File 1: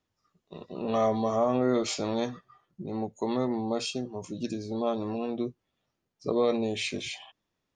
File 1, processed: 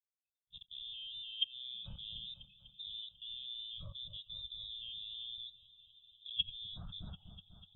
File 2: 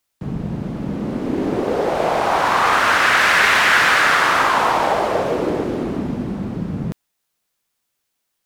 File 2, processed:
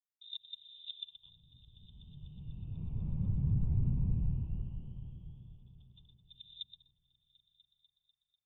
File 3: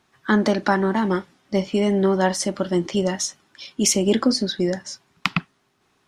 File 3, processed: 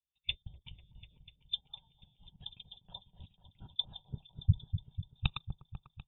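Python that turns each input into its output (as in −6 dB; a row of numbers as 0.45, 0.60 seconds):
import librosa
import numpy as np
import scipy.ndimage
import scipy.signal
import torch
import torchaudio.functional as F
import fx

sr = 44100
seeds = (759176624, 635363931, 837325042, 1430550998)

y = fx.diode_clip(x, sr, knee_db=-16.0)
y = fx.freq_invert(y, sr, carrier_hz=3800)
y = fx.curve_eq(y, sr, hz=(150.0, 280.0, 650.0, 970.0, 1900.0, 2800.0), db=(0, -16, -21, -15, -30, -12))
y = fx.level_steps(y, sr, step_db=18)
y = fx.env_lowpass_down(y, sr, base_hz=380.0, full_db=-33.5)
y = fx.echo_opening(y, sr, ms=247, hz=750, octaves=1, feedback_pct=70, wet_db=-6)
y = fx.spectral_expand(y, sr, expansion=1.5)
y = y * 10.0 ** (9.5 / 20.0)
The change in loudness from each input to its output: −12.5, −21.5, −17.5 LU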